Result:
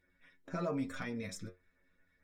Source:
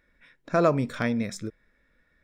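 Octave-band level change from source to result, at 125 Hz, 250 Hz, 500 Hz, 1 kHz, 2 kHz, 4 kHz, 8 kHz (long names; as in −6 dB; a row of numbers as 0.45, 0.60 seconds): −13.0, −11.5, −15.5, −15.5, −12.0, −9.5, −7.5 decibels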